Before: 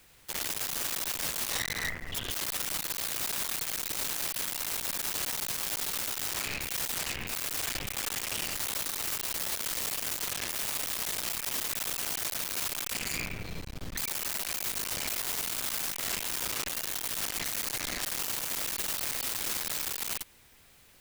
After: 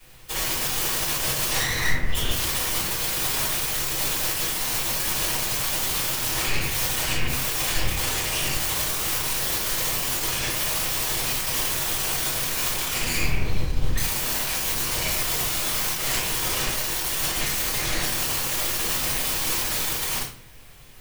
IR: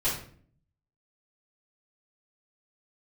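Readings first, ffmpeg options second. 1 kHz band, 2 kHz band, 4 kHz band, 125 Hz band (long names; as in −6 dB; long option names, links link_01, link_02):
+9.5 dB, +8.5 dB, +8.5 dB, +14.5 dB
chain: -filter_complex "[1:a]atrim=start_sample=2205[link_01];[0:a][link_01]afir=irnorm=-1:irlink=0"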